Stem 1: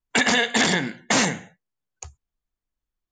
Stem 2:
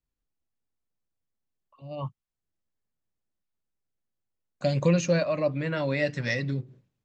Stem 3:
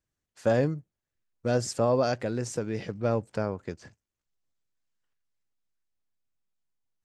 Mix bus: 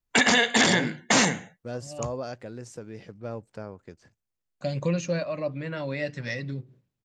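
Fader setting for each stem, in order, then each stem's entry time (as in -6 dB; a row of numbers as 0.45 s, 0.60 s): -0.5 dB, -4.0 dB, -9.0 dB; 0.00 s, 0.00 s, 0.20 s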